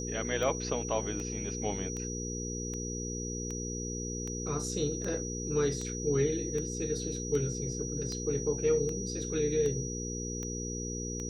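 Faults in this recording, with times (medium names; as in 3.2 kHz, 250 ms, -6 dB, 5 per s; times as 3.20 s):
hum 60 Hz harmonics 8 -38 dBFS
tick 78 rpm -25 dBFS
whine 5.8 kHz -39 dBFS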